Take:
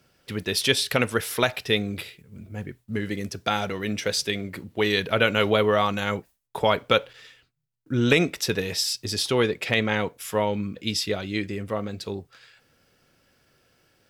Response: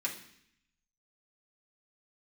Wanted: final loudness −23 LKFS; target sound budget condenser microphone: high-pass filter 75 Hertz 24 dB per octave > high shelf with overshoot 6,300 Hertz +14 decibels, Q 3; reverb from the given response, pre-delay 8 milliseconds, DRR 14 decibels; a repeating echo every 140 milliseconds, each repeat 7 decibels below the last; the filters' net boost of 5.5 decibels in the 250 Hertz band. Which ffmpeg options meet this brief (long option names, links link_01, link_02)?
-filter_complex "[0:a]equalizer=frequency=250:width_type=o:gain=7,aecho=1:1:140|280|420|560|700:0.447|0.201|0.0905|0.0407|0.0183,asplit=2[link_01][link_02];[1:a]atrim=start_sample=2205,adelay=8[link_03];[link_02][link_03]afir=irnorm=-1:irlink=0,volume=-17.5dB[link_04];[link_01][link_04]amix=inputs=2:normalize=0,highpass=frequency=75:width=0.5412,highpass=frequency=75:width=1.3066,highshelf=frequency=6300:width_type=q:width=3:gain=14,volume=-4.5dB"